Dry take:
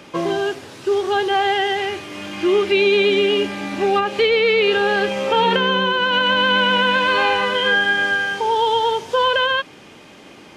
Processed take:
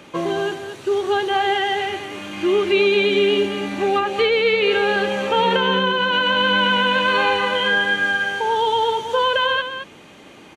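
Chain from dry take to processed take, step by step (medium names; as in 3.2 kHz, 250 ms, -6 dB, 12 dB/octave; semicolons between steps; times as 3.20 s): band-stop 5.1 kHz, Q 6.5; delay 220 ms -9 dB; trim -1.5 dB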